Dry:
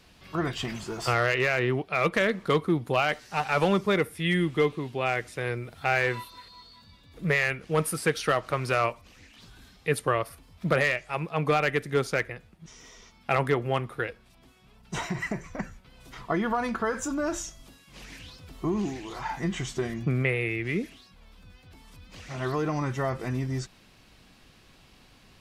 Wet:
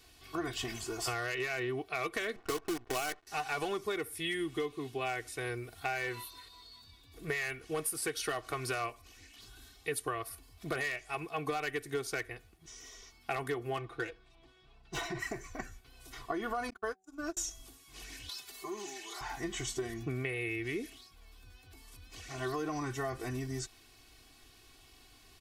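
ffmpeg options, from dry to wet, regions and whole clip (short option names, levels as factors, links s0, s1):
-filter_complex "[0:a]asettb=1/sr,asplit=3[s0][s1][s2];[s0]atrim=end=2.364[s3];[s1]atrim=start=2.36:end=3.27,asetpts=PTS-STARTPTS,afade=t=in:d=0.004:c=qsin,afade=t=out:st=0.906:d=0.004:c=qsin,highpass=180,lowpass=2900,acrusher=bits=5:dc=4:mix=0:aa=0.000001,adynamicsmooth=sensitivity=7.5:basefreq=1300[s4];[s2]atrim=start=3.266[s5];[s3][s4]acrossfade=d=0.004:c1=hsin:c2=qsin[s6];[s6][s5]acrossfade=d=0.004:c1=qsin:c2=hsin,asettb=1/sr,asplit=3[s7][s8][s9];[s7]atrim=end=13.774[s10];[s8]atrim=start=13.77:end=15.19,asetpts=PTS-STARTPTS,afade=t=in:d=0.004:c=qsin,afade=t=out:st=1.416:d=0.004:c=qsin,equalizer=f=3800:t=o:w=0.23:g=4.5,adynamicsmooth=sensitivity=5:basefreq=3700,aecho=1:1:6:0.52,atrim=end_sample=62622[s11];[s9]atrim=start=15.186[s12];[s10][s11]acrossfade=d=0.004:c1=hsin:c2=qsin[s13];[s13][s12]acrossfade=d=0.004:c1=qsin:c2=hsin,asettb=1/sr,asplit=3[s14][s15][s16];[s14]atrim=end=16.704[s17];[s15]atrim=start=16.7:end=17.37,asetpts=PTS-STARTPTS,afade=t=in:d=0.004:c=qsin,afade=t=out:st=0.666:d=0.004:c=qsin,agate=range=0.00178:threshold=0.0398:ratio=16:release=100:detection=peak,bandreject=f=189.3:t=h:w=4,bandreject=f=378.6:t=h:w=4,bandreject=f=567.9:t=h:w=4,bandreject=f=757.2:t=h:w=4[s18];[s16]atrim=start=17.366[s19];[s17][s18]acrossfade=d=0.004:c1=hsin:c2=qsin[s20];[s20][s19]acrossfade=d=0.004:c1=qsin:c2=hsin,asettb=1/sr,asplit=3[s21][s22][s23];[s21]atrim=end=18.294[s24];[s22]atrim=start=18.29:end=19.21,asetpts=PTS-STARTPTS,afade=t=in:d=0.004:c=qsin,afade=t=out:st=0.916:d=0.004:c=qsin,acompressor=mode=upward:threshold=0.0224:ratio=2.5:attack=3.2:release=140:knee=2.83:detection=peak,highpass=f=1300:p=1,aecho=1:1:5:0.85,atrim=end_sample=40572[s25];[s23]atrim=start=19.206[s26];[s24][s25]acrossfade=d=0.004:c1=hsin:c2=qsin[s27];[s27][s26]acrossfade=d=0.004:c1=qsin:c2=hsin,highshelf=f=5500:g=12,aecho=1:1:2.7:0.78,acompressor=threshold=0.0631:ratio=6,volume=0.422"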